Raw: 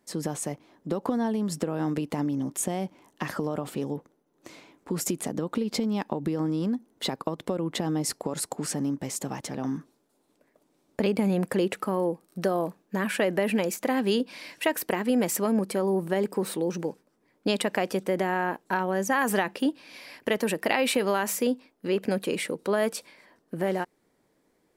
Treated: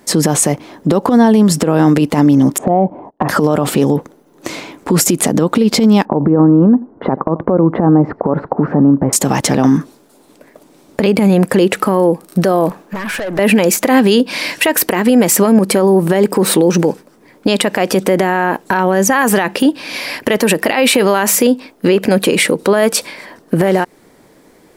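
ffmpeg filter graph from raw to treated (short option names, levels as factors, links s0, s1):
-filter_complex "[0:a]asettb=1/sr,asplit=3[s0][s1][s2];[s0]atrim=end=2.584[s3];[s1]atrim=start=2.58:end=3.29,asetpts=PTS-STARTPTS,afade=t=in:d=0.004:c=qsin,afade=t=out:st=0.706:d=0.004:c=qsin,agate=range=0.0708:threshold=0.001:ratio=16:release=100:detection=peak,lowpass=f=730:t=q:w=2.3,asoftclip=type=hard:threshold=0.211[s4];[s2]atrim=start=3.286[s5];[s3][s4]acrossfade=d=0.004:c1=hsin:c2=qsin[s6];[s6][s5]acrossfade=d=0.004:c1=qsin:c2=hsin,asettb=1/sr,asplit=3[s7][s8][s9];[s7]atrim=end=6.054[s10];[s8]atrim=start=6.05:end=9.13,asetpts=PTS-STARTPTS,afade=t=in:d=0.004:c=qsin,afade=t=out:st=3.076:d=0.004:c=qsin,lowpass=f=1300:w=0.5412,lowpass=f=1300:w=1.3066,aecho=1:1:86:0.0668,atrim=end_sample=135828[s11];[s9]atrim=start=9.126[s12];[s10][s11]acrossfade=d=0.004:c1=hsin:c2=qsin[s13];[s13][s12]acrossfade=d=0.004:c1=qsin:c2=hsin,asettb=1/sr,asplit=3[s14][s15][s16];[s14]atrim=end=12.694[s17];[s15]atrim=start=12.69:end=13.39,asetpts=PTS-STARTPTS,afade=t=in:d=0.004:c=qsin,afade=t=out:st=0.696:d=0.004:c=qsin,equalizer=f=1000:w=0.66:g=7,acompressor=threshold=0.02:ratio=8:attack=3.2:release=140:knee=1:detection=peak,aeval=exprs='(tanh(100*val(0)+0.15)-tanh(0.15))/100':c=same[s18];[s16]atrim=start=13.386[s19];[s17][s18]acrossfade=d=0.004:c1=hsin:c2=qsin[s20];[s20][s19]acrossfade=d=0.004:c1=qsin:c2=hsin,acompressor=threshold=0.0447:ratio=6,alimiter=level_in=15:limit=0.891:release=50:level=0:latency=1,volume=0.891"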